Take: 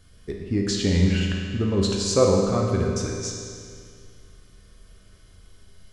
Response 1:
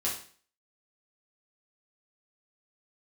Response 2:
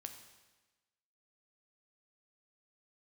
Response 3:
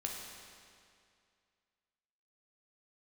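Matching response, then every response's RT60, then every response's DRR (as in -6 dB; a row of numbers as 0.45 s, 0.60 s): 3; 0.45 s, 1.2 s, 2.3 s; -6.5 dB, 5.5 dB, -1.0 dB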